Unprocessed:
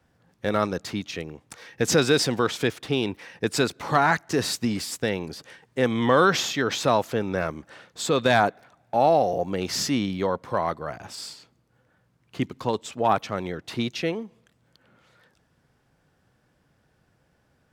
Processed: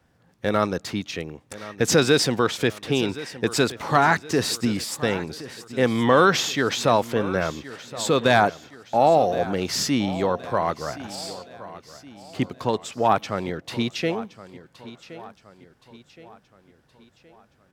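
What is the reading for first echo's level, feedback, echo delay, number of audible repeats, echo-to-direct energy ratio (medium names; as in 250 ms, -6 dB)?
-16.5 dB, 47%, 1070 ms, 3, -15.5 dB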